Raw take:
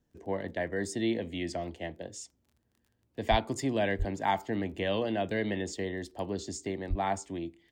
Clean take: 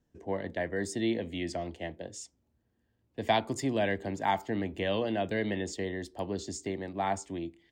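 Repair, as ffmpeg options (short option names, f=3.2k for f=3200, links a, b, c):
-filter_complex "[0:a]adeclick=t=4,asplit=3[a][b][c];[a]afade=t=out:st=3.3:d=0.02[d];[b]highpass=f=140:w=0.5412,highpass=f=140:w=1.3066,afade=t=in:st=3.3:d=0.02,afade=t=out:st=3.42:d=0.02[e];[c]afade=t=in:st=3.42:d=0.02[f];[d][e][f]amix=inputs=3:normalize=0,asplit=3[g][h][i];[g]afade=t=out:st=3.98:d=0.02[j];[h]highpass=f=140:w=0.5412,highpass=f=140:w=1.3066,afade=t=in:st=3.98:d=0.02,afade=t=out:st=4.1:d=0.02[k];[i]afade=t=in:st=4.1:d=0.02[l];[j][k][l]amix=inputs=3:normalize=0,asplit=3[m][n][o];[m]afade=t=out:st=6.89:d=0.02[p];[n]highpass=f=140:w=0.5412,highpass=f=140:w=1.3066,afade=t=in:st=6.89:d=0.02,afade=t=out:st=7.01:d=0.02[q];[o]afade=t=in:st=7.01:d=0.02[r];[p][q][r]amix=inputs=3:normalize=0"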